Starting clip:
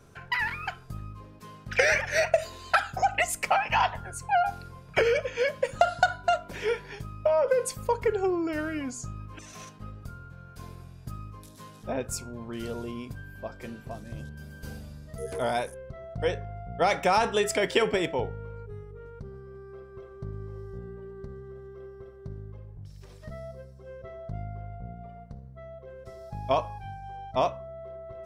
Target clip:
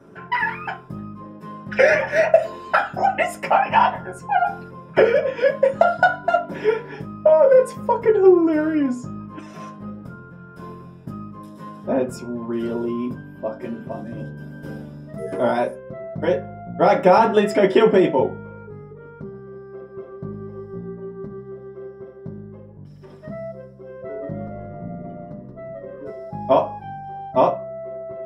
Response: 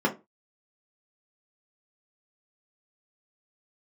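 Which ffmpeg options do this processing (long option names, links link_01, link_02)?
-filter_complex "[0:a]asettb=1/sr,asplit=3[link_01][link_02][link_03];[link_01]atrim=end=23.914[link_04];[link_02]atrim=start=23.91:end=26.1,asetpts=PTS-STARTPTS,afade=type=in:duration=0.004:curve=qsin,afade=type=out:start_time=2.186:duration=0.004:curve=qsin,asplit=6[link_05][link_06][link_07][link_08][link_09][link_10];[link_06]adelay=177,afreqshift=-100,volume=-4dB[link_11];[link_07]adelay=354,afreqshift=-200,volume=-12dB[link_12];[link_08]adelay=531,afreqshift=-300,volume=-19.9dB[link_13];[link_09]adelay=708,afreqshift=-400,volume=-27.9dB[link_14];[link_10]adelay=885,afreqshift=-500,volume=-35.8dB[link_15];[link_05][link_11][link_12][link_13][link_14][link_15]amix=inputs=6:normalize=0,atrim=end_sample=96579[link_16];[link_03]atrim=start=26.096[link_17];[link_04][link_16]acrossfade=duration=0.004:curve1=hsin:curve2=qsin[link_18];[link_18][link_17]acrossfade=duration=0.004:curve1=qsin:curve2=hsin[link_19];[1:a]atrim=start_sample=2205[link_20];[link_19][link_20]afir=irnorm=-1:irlink=0,volume=-6dB"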